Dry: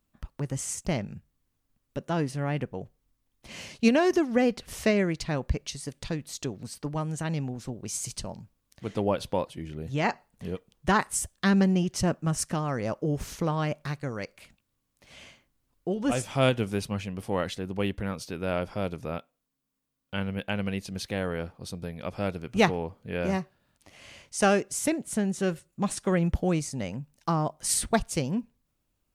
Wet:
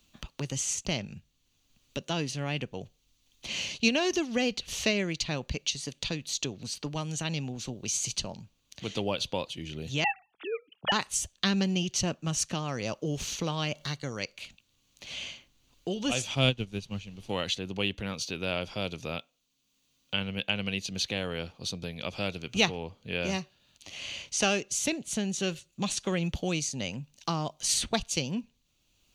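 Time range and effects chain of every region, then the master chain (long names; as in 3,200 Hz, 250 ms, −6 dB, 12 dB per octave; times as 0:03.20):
0:10.04–0:10.92: three sine waves on the formant tracks + parametric band 1,400 Hz +7.5 dB 0.31 octaves + mains-hum notches 50/100/150/200 Hz
0:13.75–0:14.18: Butterworth band-reject 2,500 Hz, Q 6.4 + upward compression, threshold −44 dBFS
0:16.34–0:17.29: low-shelf EQ 260 Hz +11.5 dB + background noise brown −38 dBFS + expander for the loud parts 2.5 to 1, over −26 dBFS
whole clip: flat-topped bell 4,100 Hz +13.5 dB; notch filter 5,200 Hz, Q 7.2; multiband upward and downward compressor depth 40%; level −4.5 dB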